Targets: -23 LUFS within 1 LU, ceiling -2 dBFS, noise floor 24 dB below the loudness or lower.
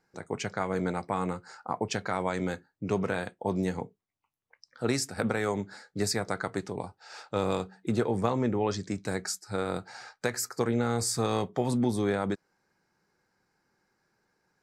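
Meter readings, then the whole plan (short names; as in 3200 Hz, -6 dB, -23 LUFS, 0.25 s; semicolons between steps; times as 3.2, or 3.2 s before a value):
loudness -31.0 LUFS; peak -11.5 dBFS; loudness target -23.0 LUFS
-> gain +8 dB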